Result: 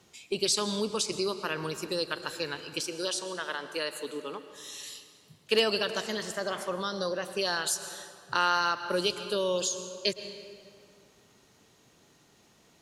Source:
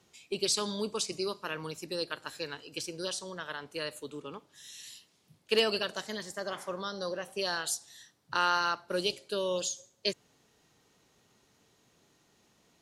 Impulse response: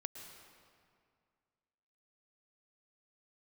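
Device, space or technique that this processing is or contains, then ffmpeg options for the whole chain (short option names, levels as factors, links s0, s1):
ducked reverb: -filter_complex "[0:a]asettb=1/sr,asplit=3[s0][s1][s2];[s0]atrim=end=2.804[s3];[s1]atrim=start=2.8:end=4.5,asetpts=PTS-STARTPTS,afade=t=in:d=0.004:c=qsin,afade=t=out:st=1.696:d=0.004:c=qsin,highpass=270[s4];[s2]atrim=start=4.496[s5];[s3][s4]acrossfade=d=0.004:c1=hsin:c2=qsin[s6];[s6][s5]acrossfade=d=0.004:c1=qsin:c2=hsin,asplit=3[s7][s8][s9];[1:a]atrim=start_sample=2205[s10];[s8][s10]afir=irnorm=-1:irlink=0[s11];[s9]apad=whole_len=565294[s12];[s11][s12]sidechaincompress=threshold=0.0178:ratio=8:attack=22:release=153,volume=1.26[s13];[s7][s13]amix=inputs=2:normalize=0"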